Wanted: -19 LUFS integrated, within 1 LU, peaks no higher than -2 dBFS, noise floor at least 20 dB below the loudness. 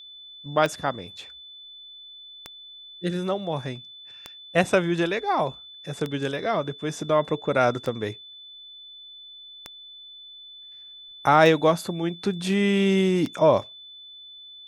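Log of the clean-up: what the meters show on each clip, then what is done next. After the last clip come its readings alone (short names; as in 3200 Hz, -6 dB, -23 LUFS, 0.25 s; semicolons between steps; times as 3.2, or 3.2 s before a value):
clicks 8; steady tone 3500 Hz; tone level -42 dBFS; loudness -24.0 LUFS; peak -4.5 dBFS; loudness target -19.0 LUFS
-> de-click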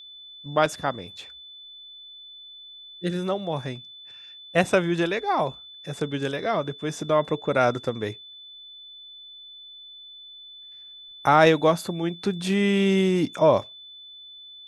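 clicks 0; steady tone 3500 Hz; tone level -42 dBFS
-> notch 3500 Hz, Q 30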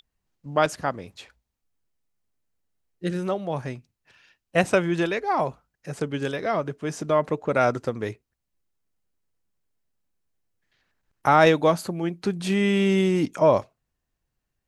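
steady tone none; loudness -24.0 LUFS; peak -4.5 dBFS; loudness target -19.0 LUFS
-> gain +5 dB; limiter -2 dBFS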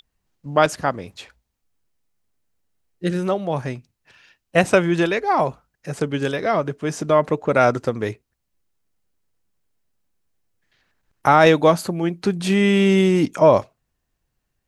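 loudness -19.5 LUFS; peak -2.0 dBFS; noise floor -77 dBFS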